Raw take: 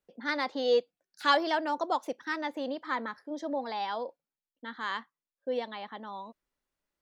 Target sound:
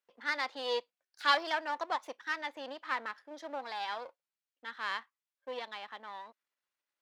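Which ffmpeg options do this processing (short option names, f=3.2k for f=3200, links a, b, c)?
-af "aeval=exprs='if(lt(val(0),0),0.447*val(0),val(0))':c=same,highpass=f=580:p=1,equalizer=f=2.1k:w=0.32:g=9,volume=-6.5dB"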